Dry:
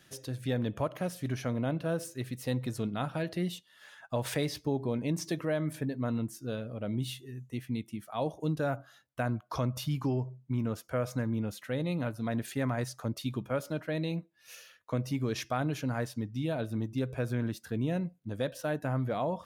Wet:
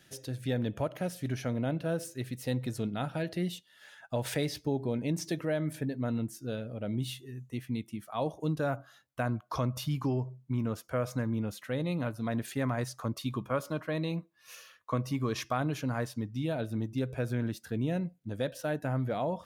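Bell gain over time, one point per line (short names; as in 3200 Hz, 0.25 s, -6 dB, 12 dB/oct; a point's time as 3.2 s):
bell 1100 Hz 0.25 oct
-8 dB
from 7 s +3 dB
from 13 s +12.5 dB
from 15.52 s +4 dB
from 16.52 s -4.5 dB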